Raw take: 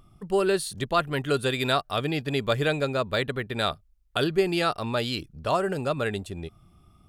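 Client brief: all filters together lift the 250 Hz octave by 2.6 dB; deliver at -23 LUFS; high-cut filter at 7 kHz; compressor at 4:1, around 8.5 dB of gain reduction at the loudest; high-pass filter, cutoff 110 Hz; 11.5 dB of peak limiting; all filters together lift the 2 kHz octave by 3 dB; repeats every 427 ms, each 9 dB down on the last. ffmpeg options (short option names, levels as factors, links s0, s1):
-af "highpass=110,lowpass=7000,equalizer=f=250:t=o:g=4,equalizer=f=2000:t=o:g=4,acompressor=threshold=0.0501:ratio=4,alimiter=limit=0.0841:level=0:latency=1,aecho=1:1:427|854|1281|1708:0.355|0.124|0.0435|0.0152,volume=2.99"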